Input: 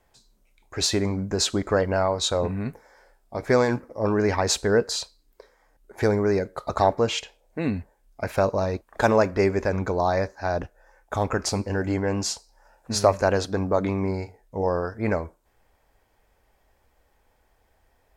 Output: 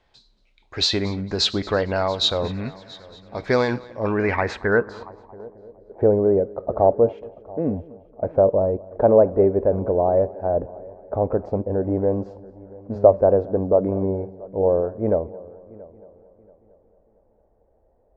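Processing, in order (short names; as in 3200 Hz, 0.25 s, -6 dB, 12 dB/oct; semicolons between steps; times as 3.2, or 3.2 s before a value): multi-head echo 0.227 s, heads first and third, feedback 45%, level -22 dB; low-pass sweep 3900 Hz -> 570 Hz, 3.81–5.73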